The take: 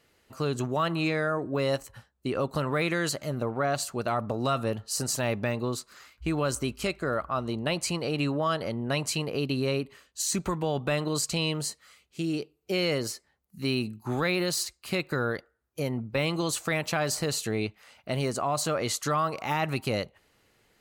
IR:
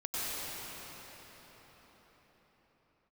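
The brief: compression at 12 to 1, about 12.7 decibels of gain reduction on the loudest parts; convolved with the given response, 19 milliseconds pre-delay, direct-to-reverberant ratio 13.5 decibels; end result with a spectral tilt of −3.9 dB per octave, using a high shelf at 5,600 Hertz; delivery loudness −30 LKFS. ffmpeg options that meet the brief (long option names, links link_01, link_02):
-filter_complex "[0:a]highshelf=frequency=5600:gain=4.5,acompressor=threshold=-36dB:ratio=12,asplit=2[link_01][link_02];[1:a]atrim=start_sample=2205,adelay=19[link_03];[link_02][link_03]afir=irnorm=-1:irlink=0,volume=-20.5dB[link_04];[link_01][link_04]amix=inputs=2:normalize=0,volume=10dB"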